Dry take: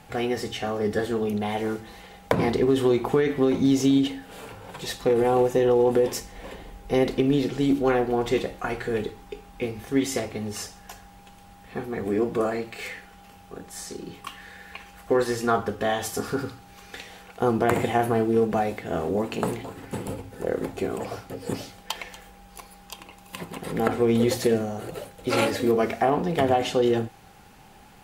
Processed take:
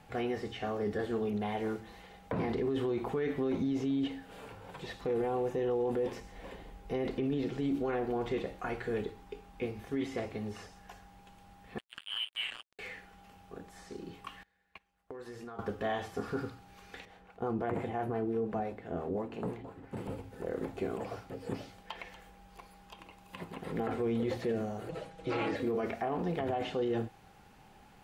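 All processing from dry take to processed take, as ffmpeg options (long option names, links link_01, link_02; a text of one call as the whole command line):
ffmpeg -i in.wav -filter_complex "[0:a]asettb=1/sr,asplit=3[link_01][link_02][link_03];[link_01]atrim=end=11.784[link_04];[link_02]atrim=start=11.78:end=12.79,asetpts=PTS-STARTPTS,afade=type=in:duration=0.004:curve=qsin,afade=type=out:start_time=1.006:duration=0.004:curve=qsin,lowpass=frequency=2900:width_type=q:width=0.5098,lowpass=frequency=2900:width_type=q:width=0.6013,lowpass=frequency=2900:width_type=q:width=0.9,lowpass=frequency=2900:width_type=q:width=2.563,afreqshift=-3400,aemphasis=mode=reproduction:type=cd,acrusher=bits=3:mix=0:aa=0.5[link_05];[link_03]atrim=start=12.786[link_06];[link_04][link_05]acrossfade=duration=0.004:curve1=hsin:curve2=qsin[link_07];[link_07][link_06]acrossfade=duration=0.004:curve1=qsin:curve2=hsin,asettb=1/sr,asplit=3[link_08][link_09][link_10];[link_08]atrim=end=14.434[link_11];[link_09]atrim=start=14.43:end=15.59,asetpts=PTS-STARTPTS,afade=type=in:duration=0.004:curve=qsin,afade=type=out:start_time=1.156:duration=0.004:curve=qsin,agate=range=-24dB:threshold=-39dB:ratio=16:release=100:detection=peak,acompressor=threshold=-34dB:ratio=16:attack=3.2:release=140:knee=1:detection=peak[link_12];[link_10]atrim=start=15.586[link_13];[link_11][link_12]acrossfade=duration=0.004:curve1=hsin:curve2=qsin[link_14];[link_14][link_13]acrossfade=duration=0.004:curve1=qsin:curve2=hsin,asettb=1/sr,asplit=3[link_15][link_16][link_17];[link_15]atrim=end=17.054[link_18];[link_16]atrim=start=17.05:end=19.97,asetpts=PTS-STARTPTS,afade=type=in:duration=0.004:curve=qsin,afade=type=out:start_time=2.916:duration=0.004:curve=qsin,highshelf=frequency=2700:gain=-12,acrossover=split=560[link_19][link_20];[link_19]aeval=exprs='val(0)*(1-0.5/2+0.5/2*cos(2*PI*5.8*n/s))':channel_layout=same[link_21];[link_20]aeval=exprs='val(0)*(1-0.5/2-0.5/2*cos(2*PI*5.8*n/s))':channel_layout=same[link_22];[link_21][link_22]amix=inputs=2:normalize=0[link_23];[link_17]atrim=start=19.966[link_24];[link_18][link_23]acrossfade=duration=0.004:curve1=hsin:curve2=qsin[link_25];[link_25][link_24]acrossfade=duration=0.004:curve1=qsin:curve2=hsin,asettb=1/sr,asplit=3[link_26][link_27][link_28];[link_26]atrim=end=24.894[link_29];[link_27]atrim=start=24.89:end=25.56,asetpts=PTS-STARTPTS,afade=type=in:duration=0.004:curve=qsin,afade=type=out:start_time=0.666:duration=0.004:curve=qsin,lowpass=7500,aecho=1:1:6.2:0.77,atrim=end_sample=29547[link_30];[link_28]atrim=start=25.556[link_31];[link_29][link_30]acrossfade=duration=0.004:curve1=hsin:curve2=qsin[link_32];[link_32][link_31]acrossfade=duration=0.004:curve1=qsin:curve2=hsin,acrossover=split=3500[link_33][link_34];[link_34]acompressor=threshold=-48dB:ratio=4:attack=1:release=60[link_35];[link_33][link_35]amix=inputs=2:normalize=0,highshelf=frequency=5200:gain=-6.5,alimiter=limit=-18dB:level=0:latency=1:release=15,volume=-7dB" out.wav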